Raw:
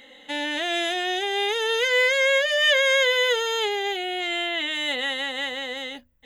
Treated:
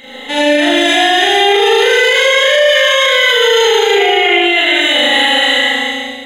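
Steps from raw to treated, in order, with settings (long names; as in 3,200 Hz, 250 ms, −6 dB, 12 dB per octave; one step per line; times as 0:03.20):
fade-out on the ending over 1.13 s
0:03.88–0:04.42: high shelf with overshoot 3,400 Hz −9 dB, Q 3
on a send: flutter between parallel walls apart 6.4 metres, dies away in 0.82 s
on the sum: four-comb reverb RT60 1.5 s, combs from 29 ms, DRR −6.5 dB
boost into a limiter +11.5 dB
level −1 dB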